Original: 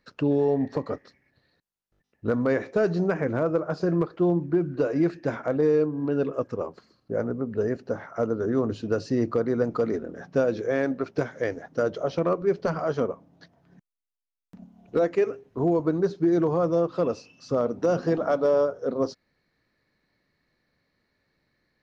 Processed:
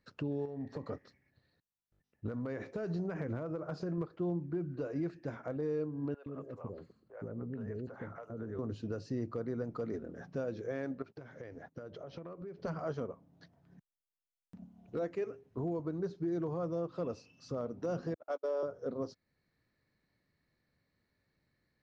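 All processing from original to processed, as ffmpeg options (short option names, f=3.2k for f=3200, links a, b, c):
-filter_complex "[0:a]asettb=1/sr,asplit=3[a][b][c];[a]atrim=end=0.454[d];[b]atrim=start=0.45:end=3.98,asetpts=PTS-STARTPTS,afade=t=in:d=0.004:c=qsin,afade=t=out:st=3.526:d=0.004:c=qsin,acompressor=threshold=-26dB:ratio=10:attack=3.2:release=140:knee=1:detection=peak,aeval=exprs='clip(val(0),-1,0.0891)':c=same[e];[c]atrim=start=3.976[f];[d][e]acrossfade=d=0.004:c1=hsin:c2=qsin[g];[g][f]acrossfade=d=0.004:c1=qsin:c2=hsin,asettb=1/sr,asplit=3[h][i][j];[h]atrim=end=6.144[k];[i]atrim=start=6.14:end=8.59,asetpts=PTS-STARTPTS,afade=t=in:d=0.004:c=qsin,afade=t=out:st=2.446:d=0.004:c=qsin,equalizer=f=5.5k:t=o:w=0.5:g=-12.5,acompressor=threshold=-31dB:ratio=3:attack=3.2:release=140:knee=1:detection=peak,acrossover=split=560|5400[l][m][n];[n]adelay=70[o];[l]adelay=120[p];[p][m][o]amix=inputs=3:normalize=0,atrim=end_sample=108045[q];[j]atrim=start=8.586[r];[k][q]acrossfade=d=0.004:c1=hsin:c2=qsin[s];[s][r]acrossfade=d=0.004:c1=qsin:c2=hsin,asettb=1/sr,asplit=3[t][u][v];[t]atrim=end=11.024[w];[u]atrim=start=11.02:end=12.62,asetpts=PTS-STARTPTS,afade=t=in:d=0.004:c=qsin,afade=t=out:st=1.596:d=0.004:c=qsin,agate=range=-19dB:threshold=-49dB:ratio=16:release=100:detection=peak,lowpass=5k,acompressor=threshold=-35dB:ratio=10:attack=3.2:release=140:knee=1:detection=peak[x];[v]atrim=start=12.616[y];[w][x]acrossfade=d=0.004:c1=hsin:c2=qsin[z];[z][y]acrossfade=d=0.004:c1=qsin:c2=hsin,asettb=1/sr,asplit=3[aa][ab][ac];[aa]atrim=end=18.144[ad];[ab]atrim=start=18.14:end=18.63,asetpts=PTS-STARTPTS,afade=t=in:d=0.004:c=qsin,afade=t=out:st=0.486:d=0.004:c=qsin,highpass=f=350:w=0.5412,highpass=f=350:w=1.3066,bandreject=f=1.2k:w=28,agate=range=-47dB:threshold=-25dB:ratio=16:release=100:detection=peak[ae];[ac]atrim=start=18.626[af];[ad][ae]acrossfade=d=0.004:c1=hsin:c2=qsin[ag];[ag][af]acrossfade=d=0.004:c1=qsin:c2=hsin,equalizer=f=95:t=o:w=2.1:g=7,alimiter=limit=-19dB:level=0:latency=1:release=446,volume=-8.5dB"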